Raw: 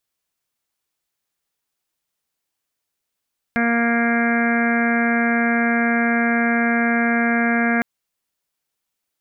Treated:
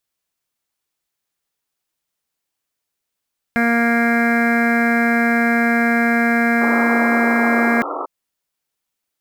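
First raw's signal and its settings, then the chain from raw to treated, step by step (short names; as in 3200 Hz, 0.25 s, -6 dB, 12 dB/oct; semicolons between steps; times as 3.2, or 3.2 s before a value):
steady additive tone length 4.26 s, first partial 234 Hz, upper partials -10/-6/-18.5/-15/-10/-4/-14.5/-8/-14 dB, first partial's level -18.5 dB
in parallel at -10.5 dB: bit-crush 5-bit; on the sum: painted sound noise, 6.61–8.06, 270–1400 Hz -25 dBFS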